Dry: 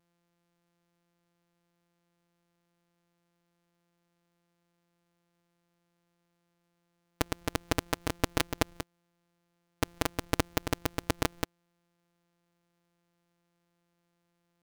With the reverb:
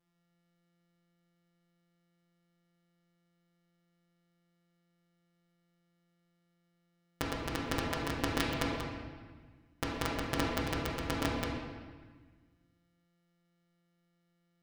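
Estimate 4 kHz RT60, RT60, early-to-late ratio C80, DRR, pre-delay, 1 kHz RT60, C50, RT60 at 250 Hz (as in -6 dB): 1.2 s, 1.5 s, 2.5 dB, -4.0 dB, 5 ms, 1.5 s, 0.5 dB, 1.9 s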